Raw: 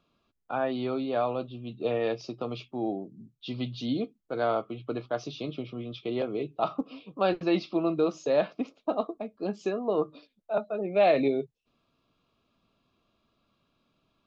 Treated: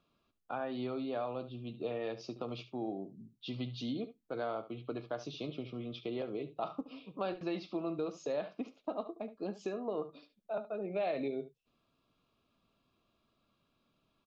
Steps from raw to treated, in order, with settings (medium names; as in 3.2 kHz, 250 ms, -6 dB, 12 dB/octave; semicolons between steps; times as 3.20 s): compression 2.5:1, threshold -32 dBFS, peak gain reduction 9.5 dB; delay 72 ms -14 dB; trim -4 dB